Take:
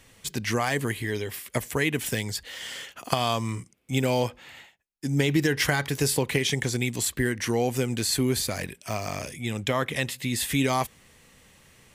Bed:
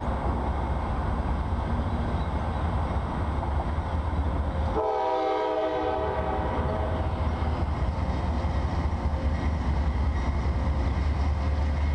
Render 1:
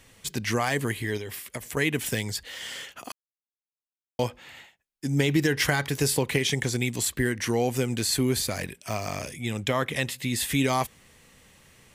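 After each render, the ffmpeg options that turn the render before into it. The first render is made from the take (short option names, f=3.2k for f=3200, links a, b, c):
-filter_complex "[0:a]asettb=1/sr,asplit=3[a][b][c];[a]atrim=end=1.174[d];[b]atrim=start=1.17:end=1.77,asetpts=PTS-STARTPTS,afade=t=in:d=0.004:c=qsin,afade=t=out:st=0.596:d=0.004:c=qsin,acompressor=threshold=-32dB:ratio=3:attack=3.2:release=140:knee=1:detection=peak[e];[c]atrim=start=1.766[f];[d][e]acrossfade=d=0.004:c1=hsin:c2=qsin[g];[g][f]acrossfade=d=0.004:c1=qsin:c2=hsin,asplit=3[h][i][j];[h]atrim=end=3.12,asetpts=PTS-STARTPTS,afade=t=out:st=3.116:d=0.004:c=hsin[k];[i]atrim=start=3.12:end=4.19,asetpts=PTS-STARTPTS,volume=0[l];[j]atrim=start=4.19,asetpts=PTS-STARTPTS,afade=t=in:d=0.004:c=hsin[m];[k][l][m]concat=n=3:v=0:a=1"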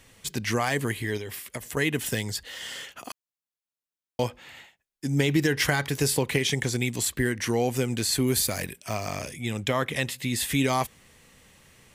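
-filter_complex "[0:a]asettb=1/sr,asplit=3[a][b][c];[a]atrim=end=1.594[d];[b]atrim=start=1.59:end=2.84,asetpts=PTS-STARTPTS,afade=t=in:d=0.004:c=qsin,afade=t=out:st=1.246:d=0.004:c=qsin,bandreject=f=2.3k:w=14[e];[c]atrim=start=2.836[f];[d][e]acrossfade=d=0.004:c1=hsin:c2=qsin[g];[g][f]acrossfade=d=0.004:c1=qsin:c2=hsin,asettb=1/sr,asplit=3[h][i][j];[h]atrim=end=8.274[k];[i]atrim=start=8.27:end=8.8,asetpts=PTS-STARTPTS,afade=t=in:d=0.004:c=qsin,afade=t=out:st=0.526:d=0.004:c=qsin,highshelf=f=10k:g=11[l];[j]atrim=start=8.796[m];[k][l]acrossfade=d=0.004:c1=hsin:c2=qsin[n];[n][m]acrossfade=d=0.004:c1=qsin:c2=hsin"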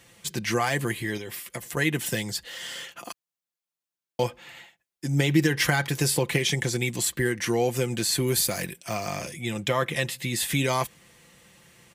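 -af "highpass=64,aecho=1:1:5.8:0.49"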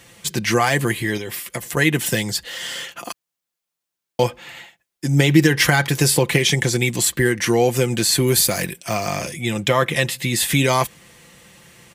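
-af "volume=7.5dB,alimiter=limit=-1dB:level=0:latency=1"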